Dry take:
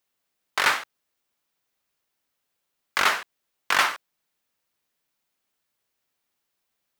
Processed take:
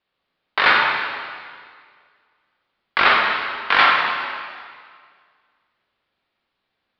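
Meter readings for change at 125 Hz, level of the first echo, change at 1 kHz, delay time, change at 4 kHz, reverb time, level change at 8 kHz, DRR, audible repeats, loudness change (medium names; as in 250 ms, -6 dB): no reading, no echo, +9.0 dB, no echo, +6.5 dB, 1.9 s, under -20 dB, -2.0 dB, no echo, +6.0 dB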